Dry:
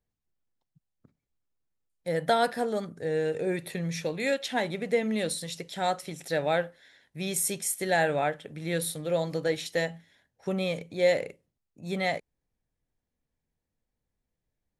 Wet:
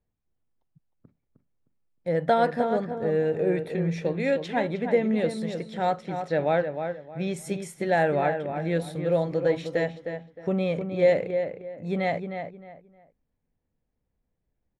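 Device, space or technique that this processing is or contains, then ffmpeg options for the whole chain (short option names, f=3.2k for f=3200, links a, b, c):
through cloth: -filter_complex "[0:a]equalizer=f=2.5k:w=1.5:g=3,asettb=1/sr,asplit=3[a][b][c];[a]atrim=end=5.954[d];[b]atrim=start=5.95:end=7.37,asetpts=PTS-STARTPTS,afade=t=in:d=0.004:c=qsin,afade=t=out:st=1.416:d=0.004:c=qsin,lowpass=8k[e];[c]atrim=start=7.366[f];[d][e]acrossfade=d=0.004:c1=hsin:c2=qsin[g];[g][f]acrossfade=d=0.004:c1=qsin:c2=hsin,lowpass=8.5k,highshelf=f=2.1k:g=-16.5,asplit=2[h][i];[i]adelay=309,lowpass=f=2.4k:p=1,volume=-7dB,asplit=2[j][k];[k]adelay=309,lowpass=f=2.4k:p=1,volume=0.27,asplit=2[l][m];[m]adelay=309,lowpass=f=2.4k:p=1,volume=0.27[n];[h][j][l][n]amix=inputs=4:normalize=0,volume=4.5dB"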